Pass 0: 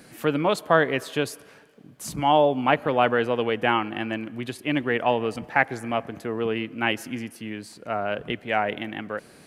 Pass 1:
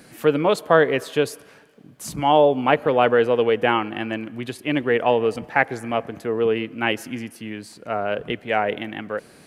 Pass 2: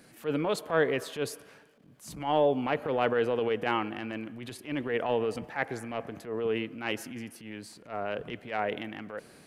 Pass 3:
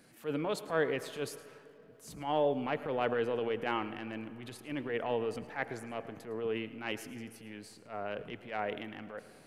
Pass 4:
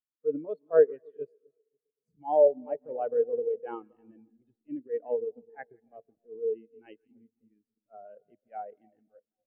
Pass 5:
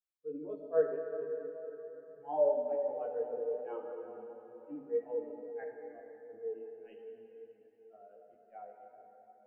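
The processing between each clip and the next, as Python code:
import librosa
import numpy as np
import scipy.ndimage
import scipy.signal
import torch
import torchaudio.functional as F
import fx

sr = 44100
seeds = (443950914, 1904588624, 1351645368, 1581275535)

y1 = fx.dynamic_eq(x, sr, hz=460.0, q=2.8, threshold_db=-37.0, ratio=4.0, max_db=6)
y1 = y1 * librosa.db_to_amplitude(1.5)
y2 = fx.transient(y1, sr, attack_db=-10, sustain_db=3)
y2 = y2 * librosa.db_to_amplitude(-8.0)
y3 = y2 + 10.0 ** (-17.5 / 20.0) * np.pad(y2, (int(108 * sr / 1000.0), 0))[:len(y2)]
y3 = fx.rev_freeverb(y3, sr, rt60_s=3.9, hf_ratio=0.5, predelay_ms=45, drr_db=17.5)
y3 = y3 * librosa.db_to_amplitude(-5.0)
y4 = fx.echo_split(y3, sr, split_hz=900.0, low_ms=260, high_ms=167, feedback_pct=52, wet_db=-10.0)
y4 = fx.transient(y4, sr, attack_db=6, sustain_db=-5)
y4 = fx.spectral_expand(y4, sr, expansion=2.5)
y4 = y4 * librosa.db_to_amplitude(4.5)
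y5 = fx.rev_plate(y4, sr, seeds[0], rt60_s=4.2, hf_ratio=0.7, predelay_ms=0, drr_db=1.5)
y5 = fx.chorus_voices(y5, sr, voices=6, hz=0.37, base_ms=17, depth_ms=3.1, mix_pct=45)
y5 = y5 * librosa.db_to_amplitude(-5.0)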